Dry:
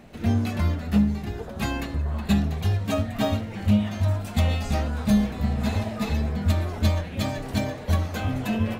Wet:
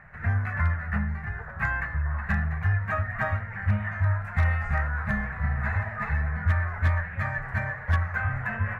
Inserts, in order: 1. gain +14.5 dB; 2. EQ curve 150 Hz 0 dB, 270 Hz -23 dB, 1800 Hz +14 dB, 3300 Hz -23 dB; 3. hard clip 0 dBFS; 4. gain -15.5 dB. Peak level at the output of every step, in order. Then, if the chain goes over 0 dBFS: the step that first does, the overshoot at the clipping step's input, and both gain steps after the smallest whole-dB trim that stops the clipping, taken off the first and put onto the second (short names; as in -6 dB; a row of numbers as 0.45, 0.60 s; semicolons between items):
+3.0, +4.5, 0.0, -15.5 dBFS; step 1, 4.5 dB; step 1 +9.5 dB, step 4 -10.5 dB